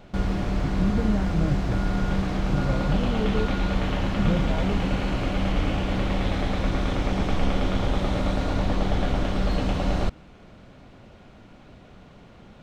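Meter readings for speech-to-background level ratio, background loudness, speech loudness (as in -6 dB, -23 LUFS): -3.5 dB, -26.5 LUFS, -30.0 LUFS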